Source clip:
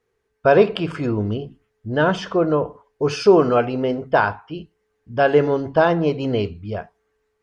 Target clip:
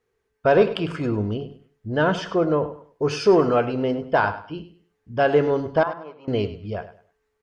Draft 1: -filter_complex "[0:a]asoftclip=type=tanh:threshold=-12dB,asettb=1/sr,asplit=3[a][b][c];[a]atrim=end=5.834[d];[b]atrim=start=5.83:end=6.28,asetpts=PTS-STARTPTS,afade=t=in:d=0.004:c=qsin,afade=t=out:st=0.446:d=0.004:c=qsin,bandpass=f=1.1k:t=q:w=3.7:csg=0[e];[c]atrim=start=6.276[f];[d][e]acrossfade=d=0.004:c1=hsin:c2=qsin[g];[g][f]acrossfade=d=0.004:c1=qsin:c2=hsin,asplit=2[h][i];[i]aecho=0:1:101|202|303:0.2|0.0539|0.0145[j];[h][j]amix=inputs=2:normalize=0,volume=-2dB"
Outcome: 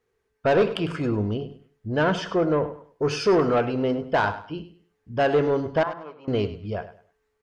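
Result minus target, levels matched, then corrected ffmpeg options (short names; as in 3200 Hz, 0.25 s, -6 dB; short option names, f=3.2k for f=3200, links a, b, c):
soft clip: distortion +11 dB
-filter_complex "[0:a]asoftclip=type=tanh:threshold=-4dB,asettb=1/sr,asplit=3[a][b][c];[a]atrim=end=5.834[d];[b]atrim=start=5.83:end=6.28,asetpts=PTS-STARTPTS,afade=t=in:d=0.004:c=qsin,afade=t=out:st=0.446:d=0.004:c=qsin,bandpass=f=1.1k:t=q:w=3.7:csg=0[e];[c]atrim=start=6.276[f];[d][e]acrossfade=d=0.004:c1=hsin:c2=qsin[g];[g][f]acrossfade=d=0.004:c1=qsin:c2=hsin,asplit=2[h][i];[i]aecho=0:1:101|202|303:0.2|0.0539|0.0145[j];[h][j]amix=inputs=2:normalize=0,volume=-2dB"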